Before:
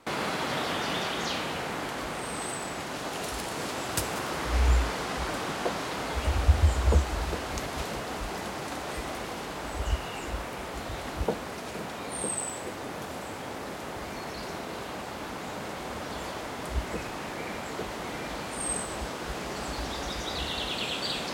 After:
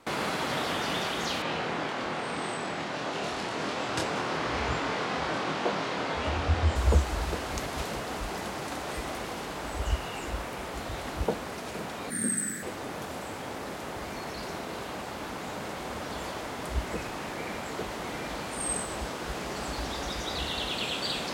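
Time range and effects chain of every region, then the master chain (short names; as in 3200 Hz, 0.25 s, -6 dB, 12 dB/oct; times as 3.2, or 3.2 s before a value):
1.42–6.76 BPF 110–4900 Hz + doubler 25 ms -2.5 dB + short-mantissa float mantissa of 8-bit
12.1–12.63 EQ curve 100 Hz 0 dB, 170 Hz +13 dB, 320 Hz -2 dB, 580 Hz -11 dB, 920 Hz -17 dB, 1700 Hz +9 dB, 2700 Hz -11 dB, 4000 Hz -4 dB, 9700 Hz +4 dB, 15000 Hz +9 dB + frequency shift +37 Hz
whole clip: dry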